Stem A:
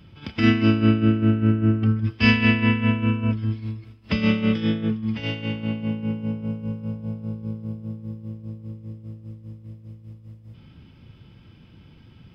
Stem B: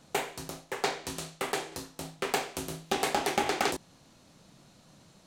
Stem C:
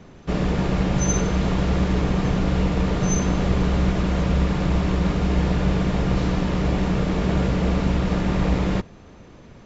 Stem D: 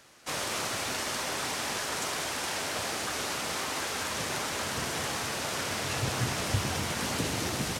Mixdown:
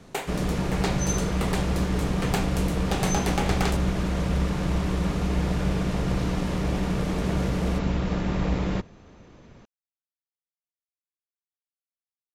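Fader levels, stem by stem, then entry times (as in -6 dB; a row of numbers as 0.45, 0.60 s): off, -0.5 dB, -4.5 dB, -12.0 dB; off, 0.00 s, 0.00 s, 0.00 s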